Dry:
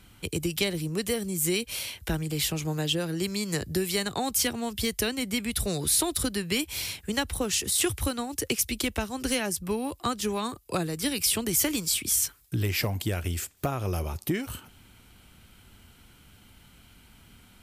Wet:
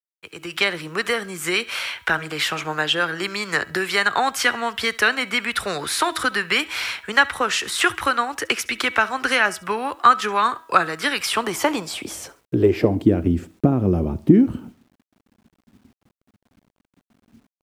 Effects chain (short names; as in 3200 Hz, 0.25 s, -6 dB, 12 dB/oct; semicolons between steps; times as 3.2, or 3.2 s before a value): gate -50 dBFS, range -30 dB; de-hum 323.5 Hz, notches 12; band-pass sweep 1400 Hz -> 240 Hz, 11.17–13.29; AGC gain up to 16.5 dB; on a send: feedback echo 69 ms, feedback 33%, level -22 dB; on the sum: bit-crush 11-bit; gain +4.5 dB